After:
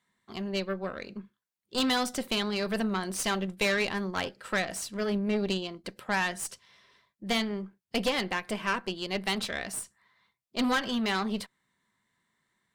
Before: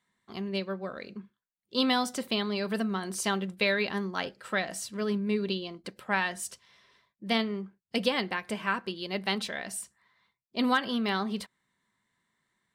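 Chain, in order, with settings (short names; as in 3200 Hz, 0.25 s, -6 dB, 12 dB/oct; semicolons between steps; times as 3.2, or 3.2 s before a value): tube stage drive 26 dB, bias 0.7; gain +5 dB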